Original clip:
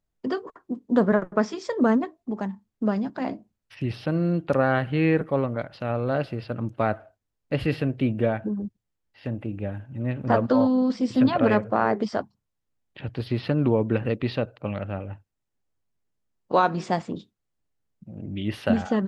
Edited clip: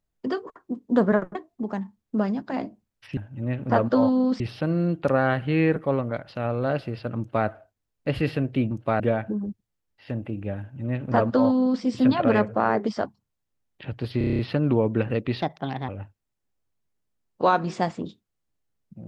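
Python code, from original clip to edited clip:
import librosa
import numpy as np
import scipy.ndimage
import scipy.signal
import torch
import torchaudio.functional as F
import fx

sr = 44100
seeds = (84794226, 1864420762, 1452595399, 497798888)

y = fx.edit(x, sr, fx.cut(start_s=1.35, length_s=0.68),
    fx.duplicate(start_s=6.63, length_s=0.29, to_s=8.16),
    fx.duplicate(start_s=9.75, length_s=1.23, to_s=3.85),
    fx.stutter(start_s=13.34, slice_s=0.03, count=8),
    fx.speed_span(start_s=14.37, length_s=0.62, speed=1.33), tone=tone)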